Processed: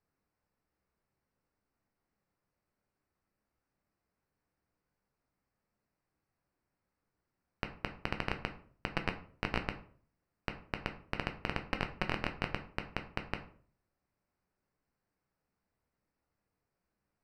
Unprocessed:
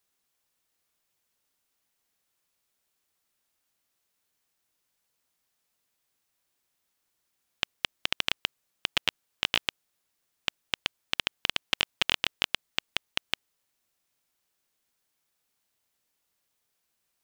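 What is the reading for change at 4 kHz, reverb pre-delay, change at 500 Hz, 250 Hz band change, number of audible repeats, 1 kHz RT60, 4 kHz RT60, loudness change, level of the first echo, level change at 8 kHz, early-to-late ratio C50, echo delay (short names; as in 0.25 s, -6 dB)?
-18.0 dB, 7 ms, +2.0 dB, +5.5 dB, none, 0.45 s, 0.30 s, -9.0 dB, none, -20.0 dB, 13.0 dB, none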